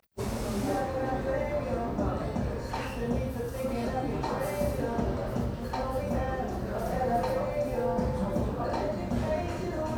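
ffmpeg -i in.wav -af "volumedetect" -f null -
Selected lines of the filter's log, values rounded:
mean_volume: -30.4 dB
max_volume: -16.3 dB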